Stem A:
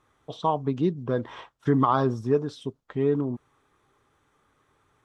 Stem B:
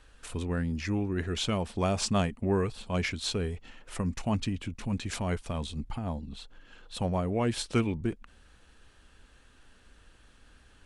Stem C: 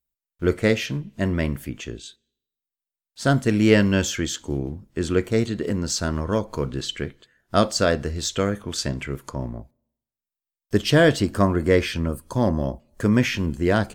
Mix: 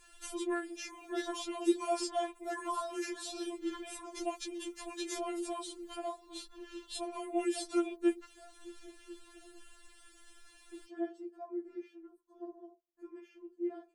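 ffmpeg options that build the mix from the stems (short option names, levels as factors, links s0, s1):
-filter_complex "[0:a]adelay=850,volume=1.33[s0];[1:a]volume=1.19[s1];[2:a]bandpass=f=360:t=q:w=1.5:csg=0,volume=0.133[s2];[s0][s1][s2]amix=inputs=3:normalize=0,acrossover=split=150|1300|6900[s3][s4][s5][s6];[s3]acompressor=threshold=0.00126:ratio=4[s7];[s4]acompressor=threshold=0.0398:ratio=4[s8];[s5]acompressor=threshold=0.00447:ratio=4[s9];[s6]acompressor=threshold=0.00141:ratio=4[s10];[s7][s8][s9][s10]amix=inputs=4:normalize=0,aemphasis=mode=production:type=50kf,afftfilt=real='re*4*eq(mod(b,16),0)':imag='im*4*eq(mod(b,16),0)':win_size=2048:overlap=0.75"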